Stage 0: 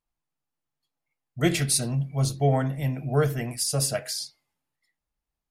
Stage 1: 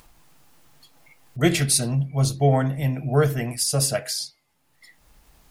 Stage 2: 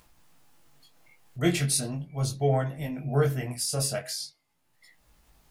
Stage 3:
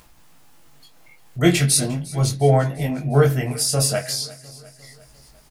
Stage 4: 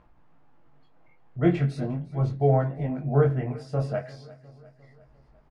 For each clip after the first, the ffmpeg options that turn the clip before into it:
ffmpeg -i in.wav -af "acompressor=mode=upward:threshold=-35dB:ratio=2.5,volume=3.5dB" out.wav
ffmpeg -i in.wav -af "flanger=delay=16.5:depth=7.6:speed=0.41,volume=-3dB" out.wav
ffmpeg -i in.wav -af "aecho=1:1:352|704|1056|1408|1760:0.1|0.057|0.0325|0.0185|0.0106,volume=8.5dB" out.wav
ffmpeg -i in.wav -af "lowpass=1300,volume=-5dB" out.wav

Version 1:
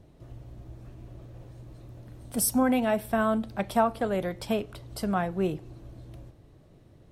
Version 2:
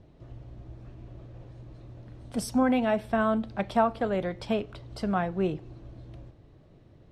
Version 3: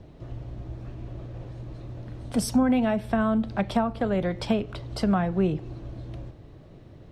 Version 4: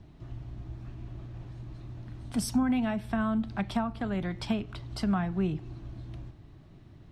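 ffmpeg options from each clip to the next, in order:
ffmpeg -i in.wav -af "lowpass=4900" out.wav
ffmpeg -i in.wav -filter_complex "[0:a]acrossover=split=220[link_01][link_02];[link_02]acompressor=threshold=-33dB:ratio=4[link_03];[link_01][link_03]amix=inputs=2:normalize=0,volume=7.5dB" out.wav
ffmpeg -i in.wav -af "equalizer=frequency=510:width_type=o:width=0.59:gain=-13,volume=-3.5dB" out.wav

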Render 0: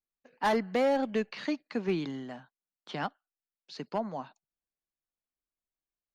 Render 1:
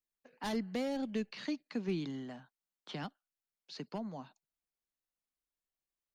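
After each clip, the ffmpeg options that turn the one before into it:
ffmpeg -i in.wav -filter_complex "[0:a]acrossover=split=320|3000[link_01][link_02][link_03];[link_02]acompressor=threshold=-49dB:ratio=2[link_04];[link_01][link_04][link_03]amix=inputs=3:normalize=0,volume=-2dB" out.wav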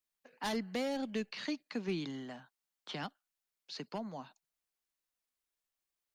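ffmpeg -i in.wav -af "lowshelf=frequency=450:gain=-6.5,volume=3.5dB" out.wav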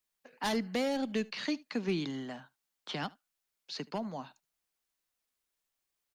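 ffmpeg -i in.wav -af "aecho=1:1:75:0.0631,volume=4dB" out.wav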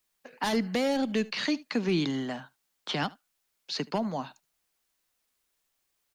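ffmpeg -i in.wav -af "alimiter=level_in=2dB:limit=-24dB:level=0:latency=1,volume=-2dB,volume=7.5dB" out.wav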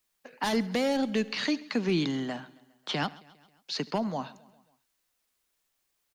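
ffmpeg -i in.wav -af "aecho=1:1:135|270|405|540:0.0794|0.0453|0.0258|0.0147" out.wav

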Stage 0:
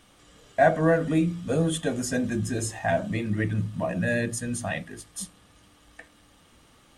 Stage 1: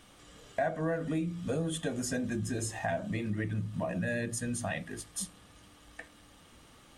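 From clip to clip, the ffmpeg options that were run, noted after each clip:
ffmpeg -i in.wav -af "acompressor=threshold=-32dB:ratio=3" out.wav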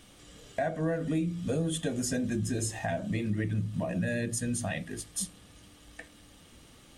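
ffmpeg -i in.wav -af "equalizer=frequency=1100:width_type=o:width=1.6:gain=-6.5,volume=3.5dB" out.wav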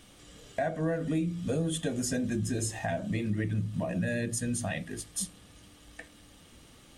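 ffmpeg -i in.wav -af anull out.wav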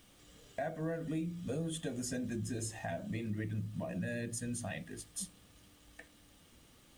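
ffmpeg -i in.wav -af "acrusher=bits=9:mix=0:aa=0.000001,volume=-7.5dB" out.wav

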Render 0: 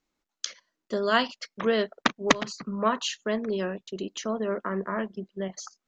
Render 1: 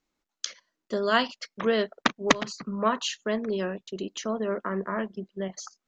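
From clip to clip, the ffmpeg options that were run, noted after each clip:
ffmpeg -i in.wav -af anull out.wav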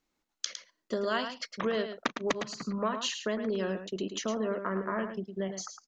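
ffmpeg -i in.wav -af "acompressor=threshold=-28dB:ratio=4,aecho=1:1:108:0.376" out.wav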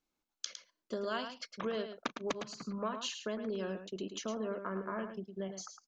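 ffmpeg -i in.wav -af "bandreject=frequency=1900:width=7.9,volume=-6dB" out.wav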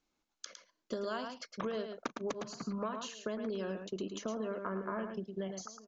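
ffmpeg -i in.wav -filter_complex "[0:a]aresample=16000,aresample=44100,acrossover=split=1700|5500[link_01][link_02][link_03];[link_01]acompressor=threshold=-39dB:ratio=4[link_04];[link_02]acompressor=threshold=-59dB:ratio=4[link_05];[link_03]acompressor=threshold=-54dB:ratio=4[link_06];[link_04][link_05][link_06]amix=inputs=3:normalize=0,asplit=2[link_07][link_08];[link_08]adelay=1399,volume=-20dB,highshelf=frequency=4000:gain=-31.5[link_09];[link_07][link_09]amix=inputs=2:normalize=0,volume=4.5dB" out.wav

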